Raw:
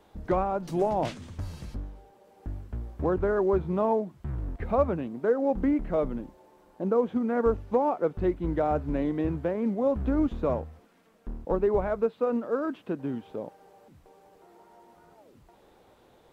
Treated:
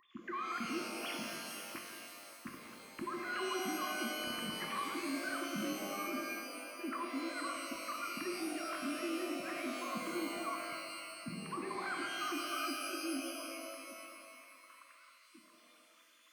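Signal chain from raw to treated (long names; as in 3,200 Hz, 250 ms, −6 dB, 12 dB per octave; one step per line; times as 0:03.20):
three sine waves on the formant tracks
treble cut that deepens with the level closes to 1,400 Hz, closed at −18.5 dBFS
linear-phase brick-wall band-stop 360–1,000 Hz
parametric band 1,600 Hz −5.5 dB 0.82 octaves
downward compressor, threshold −44 dBFS, peak gain reduction 22 dB
spectral tilt +2 dB per octave
brickwall limiter −45 dBFS, peak gain reduction 7.5 dB
reverb with rising layers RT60 2.3 s, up +12 semitones, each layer −2 dB, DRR 1 dB
level +10 dB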